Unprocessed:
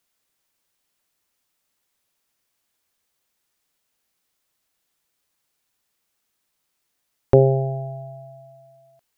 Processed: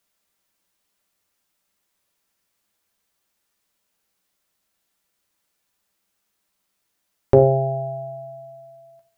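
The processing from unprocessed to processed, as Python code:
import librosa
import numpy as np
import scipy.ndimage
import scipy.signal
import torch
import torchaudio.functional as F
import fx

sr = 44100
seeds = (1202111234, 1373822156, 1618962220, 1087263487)

y = fx.rev_fdn(x, sr, rt60_s=0.49, lf_ratio=0.9, hf_ratio=0.35, size_ms=30.0, drr_db=4.5)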